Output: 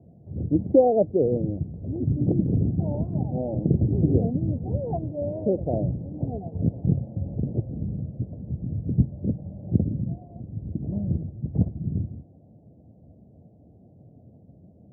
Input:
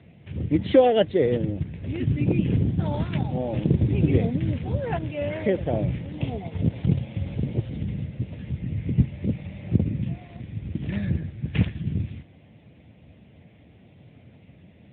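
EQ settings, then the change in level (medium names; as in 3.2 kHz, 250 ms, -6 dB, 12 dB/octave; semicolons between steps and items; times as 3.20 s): Chebyshev low-pass 720 Hz, order 4; 0.0 dB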